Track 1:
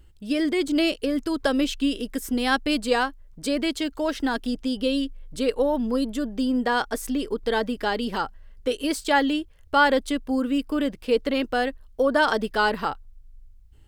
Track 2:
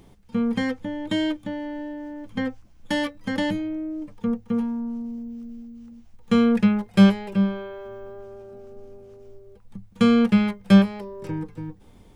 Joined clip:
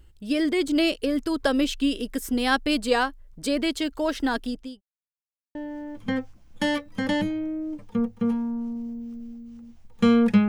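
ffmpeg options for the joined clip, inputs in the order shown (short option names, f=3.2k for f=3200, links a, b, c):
-filter_complex "[0:a]apad=whole_dur=10.48,atrim=end=10.48,asplit=2[a][b];[a]atrim=end=4.81,asetpts=PTS-STARTPTS,afade=t=out:st=4.37:d=0.44[c];[b]atrim=start=4.81:end=5.55,asetpts=PTS-STARTPTS,volume=0[d];[1:a]atrim=start=1.84:end=6.77,asetpts=PTS-STARTPTS,afade=t=in:d=0.004:c=hsin[e];[c][d][e]concat=n=3:v=0:a=1"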